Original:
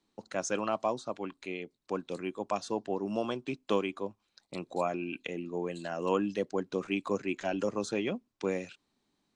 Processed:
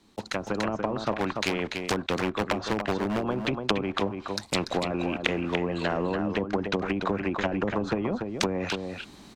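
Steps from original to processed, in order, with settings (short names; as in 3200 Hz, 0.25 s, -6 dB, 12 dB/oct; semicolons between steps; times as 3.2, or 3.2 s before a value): block floating point 5-bit; compressor 4:1, threshold -32 dBFS, peak gain reduction 8.5 dB; treble ducked by the level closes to 410 Hz, closed at -31.5 dBFS; bell 210 Hz +3.5 dB 0.26 oct; 1.2–3.22 hard clip -30.5 dBFS, distortion -21 dB; bell 69 Hz +8 dB 1.2 oct; echo 0.289 s -10.5 dB; AGC gain up to 13 dB; spectral compressor 2:1; gain +5 dB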